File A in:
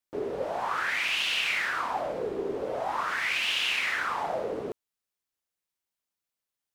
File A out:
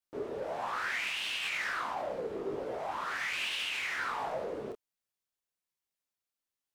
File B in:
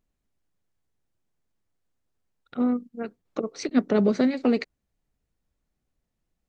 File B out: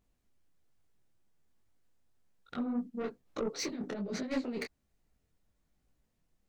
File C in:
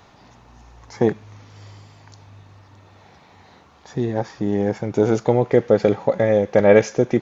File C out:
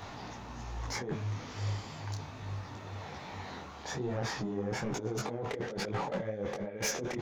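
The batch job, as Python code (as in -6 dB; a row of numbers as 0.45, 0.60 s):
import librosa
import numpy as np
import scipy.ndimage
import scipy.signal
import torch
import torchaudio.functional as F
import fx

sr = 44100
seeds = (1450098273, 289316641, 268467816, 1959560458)

y = fx.over_compress(x, sr, threshold_db=-29.0, ratio=-1.0)
y = 10.0 ** (-25.0 / 20.0) * np.tanh(y / 10.0 ** (-25.0 / 20.0))
y = fx.detune_double(y, sr, cents=41)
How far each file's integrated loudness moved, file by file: -6.0, -12.5, -18.5 LU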